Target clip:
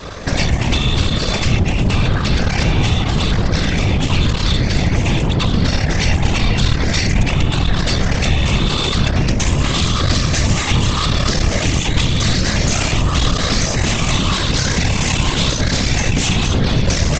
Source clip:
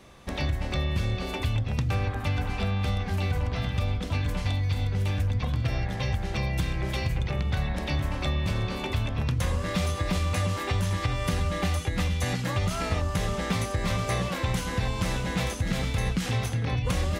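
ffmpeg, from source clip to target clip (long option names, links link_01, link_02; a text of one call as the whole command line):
ffmpeg -i in.wav -filter_complex "[0:a]afftfilt=real='re*pow(10,8/40*sin(2*PI*(0.61*log(max(b,1)*sr/1024/100)/log(2)-(0.9)*(pts-256)/sr)))':imag='im*pow(10,8/40*sin(2*PI*(0.61*log(max(b,1)*sr/1024/100)/log(2)-(0.9)*(pts-256)/sr)))':win_size=1024:overlap=0.75,adynamicequalizer=threshold=0.01:dfrequency=290:dqfactor=1:tfrequency=290:tqfactor=1:attack=5:release=100:ratio=0.375:range=2:mode=cutabove:tftype=bell,acrossover=split=230|3000[link_01][link_02][link_03];[link_02]acompressor=threshold=-44dB:ratio=4[link_04];[link_01][link_04][link_03]amix=inputs=3:normalize=0,aresample=16000,aeval=exprs='max(val(0),0)':channel_layout=same,aresample=44100,apsyclip=32.5dB,afftfilt=real='hypot(re,im)*cos(2*PI*random(0))':imag='hypot(re,im)*sin(2*PI*random(1))':win_size=512:overlap=0.75,volume=-1.5dB" out.wav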